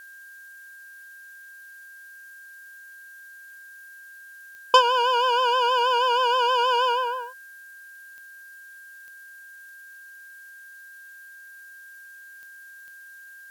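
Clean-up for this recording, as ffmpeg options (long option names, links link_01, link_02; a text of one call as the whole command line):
ffmpeg -i in.wav -af "adeclick=threshold=4,bandreject=frequency=1600:width=30,agate=range=-21dB:threshold=-38dB" out.wav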